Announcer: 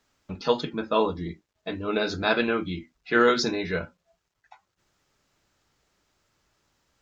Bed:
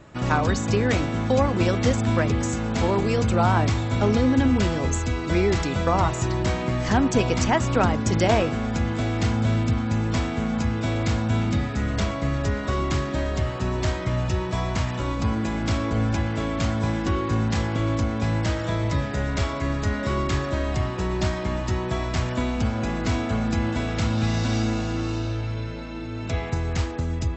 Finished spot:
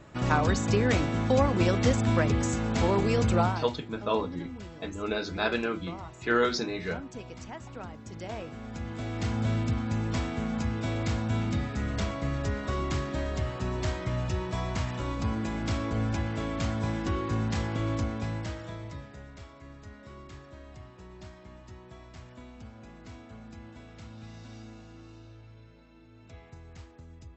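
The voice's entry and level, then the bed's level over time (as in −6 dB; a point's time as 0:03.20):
3.15 s, −5.0 dB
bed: 0:03.40 −3 dB
0:03.71 −21 dB
0:08.08 −21 dB
0:09.41 −6 dB
0:18.02 −6 dB
0:19.38 −22.5 dB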